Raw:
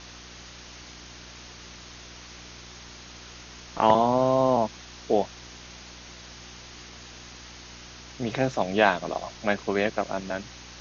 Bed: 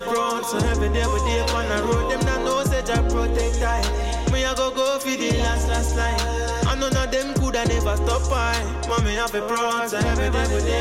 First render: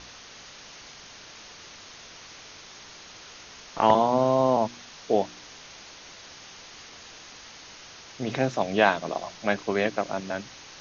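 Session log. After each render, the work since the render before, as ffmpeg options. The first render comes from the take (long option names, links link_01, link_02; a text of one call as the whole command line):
ffmpeg -i in.wav -af "bandreject=frequency=60:width_type=h:width=4,bandreject=frequency=120:width_type=h:width=4,bandreject=frequency=180:width_type=h:width=4,bandreject=frequency=240:width_type=h:width=4,bandreject=frequency=300:width_type=h:width=4,bandreject=frequency=360:width_type=h:width=4" out.wav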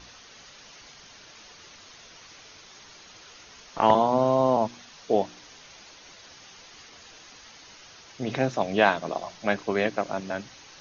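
ffmpeg -i in.wav -af "afftdn=noise_reduction=6:noise_floor=-47" out.wav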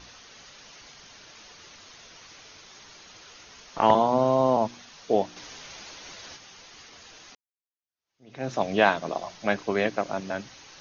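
ffmpeg -i in.wav -filter_complex "[0:a]asettb=1/sr,asplit=3[link_01][link_02][link_03];[link_01]atrim=end=5.364[link_04];[link_02]atrim=start=5.36:end=6.37,asetpts=PTS-STARTPTS,afade=type=in:duration=0.004:curve=qsin,afade=type=out:start_time=1.006:duration=0.004:curve=qsin,acontrast=33[link_05];[link_03]atrim=start=6.366[link_06];[link_04][link_05]acrossfade=duration=0.004:curve1=hsin:curve2=qsin[link_07];[link_07][link_06]acrossfade=duration=0.004:curve1=qsin:curve2=hsin,asplit=2[link_08][link_09];[link_08]atrim=end=7.35,asetpts=PTS-STARTPTS,afade=type=out:start_time=7.346:duration=0.004:curve=hsin[link_10];[link_09]atrim=start=7.35,asetpts=PTS-STARTPTS,afade=type=in:duration=1.17:curve=exp[link_11];[link_10][link_11]concat=n=2:v=0:a=1" out.wav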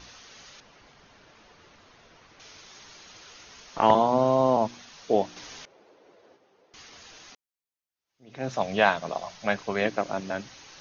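ffmpeg -i in.wav -filter_complex "[0:a]asettb=1/sr,asplit=3[link_01][link_02][link_03];[link_01]atrim=end=0.604[link_04];[link_02]atrim=start=0.6:end=2.4,asetpts=PTS-STARTPTS,afade=type=in:duration=0.004:curve=qsin,afade=type=out:start_time=1.796:duration=0.004:curve=qsin,lowpass=frequency=1200:poles=1[link_05];[link_03]atrim=start=2.396[link_06];[link_04][link_05]acrossfade=duration=0.004:curve1=hsin:curve2=qsin[link_07];[link_07][link_06]acrossfade=duration=0.004:curve1=qsin:curve2=hsin,asettb=1/sr,asplit=3[link_08][link_09][link_10];[link_08]atrim=end=5.654[link_11];[link_09]atrim=start=5.65:end=6.74,asetpts=PTS-STARTPTS,afade=type=in:duration=0.004:curve=qsin,afade=type=out:start_time=1.086:duration=0.004:curve=qsin,bandpass=frequency=440:width_type=q:width=2.2[link_12];[link_10]atrim=start=6.736[link_13];[link_11][link_12]acrossfade=duration=0.004:curve1=hsin:curve2=qsin[link_14];[link_14][link_13]acrossfade=duration=0.004:curve1=qsin:curve2=hsin,asettb=1/sr,asplit=3[link_15][link_16][link_17];[link_15]atrim=end=8.494[link_18];[link_16]atrim=start=8.49:end=9.82,asetpts=PTS-STARTPTS,afade=type=in:duration=0.004:curve=qsin,afade=type=out:start_time=1.326:duration=0.004:curve=qsin,equalizer=frequency=320:width=2.1:gain=-8.5[link_19];[link_17]atrim=start=9.816[link_20];[link_18][link_19]acrossfade=duration=0.004:curve1=hsin:curve2=qsin[link_21];[link_21][link_20]acrossfade=duration=0.004:curve1=qsin:curve2=hsin" out.wav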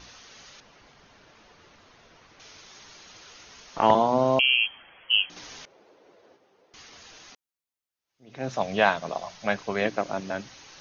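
ffmpeg -i in.wav -filter_complex "[0:a]asettb=1/sr,asplit=3[link_01][link_02][link_03];[link_01]atrim=end=4.394[link_04];[link_02]atrim=start=4.39:end=5.3,asetpts=PTS-STARTPTS,afade=type=in:duration=0.004:curve=qsin,afade=type=out:start_time=0.906:duration=0.004:curve=qsin,lowpass=frequency=2900:width_type=q:width=0.5098,lowpass=frequency=2900:width_type=q:width=0.6013,lowpass=frequency=2900:width_type=q:width=0.9,lowpass=frequency=2900:width_type=q:width=2.563,afreqshift=-3400[link_05];[link_03]atrim=start=5.296[link_06];[link_04][link_05]acrossfade=duration=0.004:curve1=hsin:curve2=qsin[link_07];[link_07][link_06]acrossfade=duration=0.004:curve1=qsin:curve2=hsin" out.wav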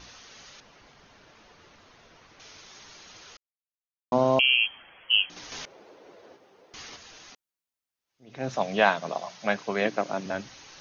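ffmpeg -i in.wav -filter_complex "[0:a]asettb=1/sr,asplit=3[link_01][link_02][link_03];[link_01]atrim=end=8.554[link_04];[link_02]atrim=start=8.55:end=10.26,asetpts=PTS-STARTPTS,afade=type=in:duration=0.004:curve=qsin,afade=type=out:start_time=1.706:duration=0.004:curve=qsin,highpass=frequency=130:width=0.5412,highpass=frequency=130:width=1.3066[link_05];[link_03]atrim=start=10.256[link_06];[link_04][link_05]acrossfade=duration=0.004:curve1=hsin:curve2=qsin[link_07];[link_07][link_06]acrossfade=duration=0.004:curve1=qsin:curve2=hsin,asplit=5[link_08][link_09][link_10][link_11][link_12];[link_08]atrim=end=3.37,asetpts=PTS-STARTPTS,afade=type=out:start_time=3.366:duration=0.004:curve=hsin[link_13];[link_09]atrim=start=3.37:end=4.12,asetpts=PTS-STARTPTS,volume=0[link_14];[link_10]atrim=start=4.12:end=5.522,asetpts=PTS-STARTPTS,afade=type=in:duration=0.004:curve=hsin[link_15];[link_11]atrim=start=5.518:end=6.962,asetpts=PTS-STARTPTS,volume=5.5dB[link_16];[link_12]atrim=start=6.958[link_17];[link_13][link_14][link_15]concat=n=3:v=0:a=1[link_18];[link_18][link_16]acrossfade=duration=0.004:curve1=hsin:curve2=hsin[link_19];[link_19][link_17]acrossfade=duration=0.004:curve1=hsin:curve2=hsin" out.wav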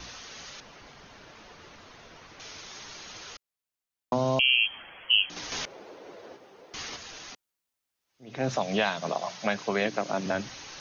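ffmpeg -i in.wav -filter_complex "[0:a]acrossover=split=150|3000[link_01][link_02][link_03];[link_02]acompressor=threshold=-27dB:ratio=6[link_04];[link_01][link_04][link_03]amix=inputs=3:normalize=0,asplit=2[link_05][link_06];[link_06]alimiter=limit=-24dB:level=0:latency=1:release=117,volume=-2dB[link_07];[link_05][link_07]amix=inputs=2:normalize=0" out.wav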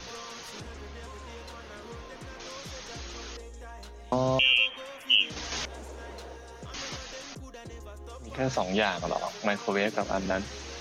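ffmpeg -i in.wav -i bed.wav -filter_complex "[1:a]volume=-23dB[link_01];[0:a][link_01]amix=inputs=2:normalize=0" out.wav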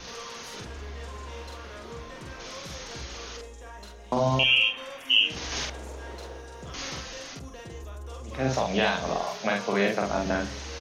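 ffmpeg -i in.wav -filter_complex "[0:a]asplit=2[link_01][link_02];[link_02]adelay=45,volume=-2dB[link_03];[link_01][link_03]amix=inputs=2:normalize=0,asplit=2[link_04][link_05];[link_05]adelay=70,lowpass=frequency=2000:poles=1,volume=-14dB,asplit=2[link_06][link_07];[link_07]adelay=70,lowpass=frequency=2000:poles=1,volume=0.5,asplit=2[link_08][link_09];[link_09]adelay=70,lowpass=frequency=2000:poles=1,volume=0.5,asplit=2[link_10][link_11];[link_11]adelay=70,lowpass=frequency=2000:poles=1,volume=0.5,asplit=2[link_12][link_13];[link_13]adelay=70,lowpass=frequency=2000:poles=1,volume=0.5[link_14];[link_04][link_06][link_08][link_10][link_12][link_14]amix=inputs=6:normalize=0" out.wav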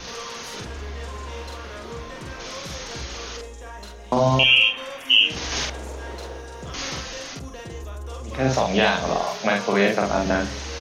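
ffmpeg -i in.wav -af "volume=5.5dB,alimiter=limit=-3dB:level=0:latency=1" out.wav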